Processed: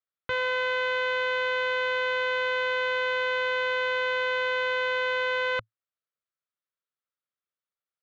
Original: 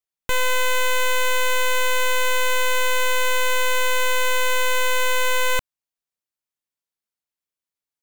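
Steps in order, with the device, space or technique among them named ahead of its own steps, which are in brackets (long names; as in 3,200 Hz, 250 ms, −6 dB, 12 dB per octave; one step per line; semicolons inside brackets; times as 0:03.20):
overdrive pedal into a guitar cabinet (mid-hump overdrive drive 2 dB, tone 4,300 Hz, clips at −18 dBFS; loudspeaker in its box 79–4,000 Hz, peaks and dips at 110 Hz +8 dB, 270 Hz −5 dB, 520 Hz +5 dB, 870 Hz −8 dB, 1,300 Hz +8 dB, 2,600 Hz −4 dB)
level −2.5 dB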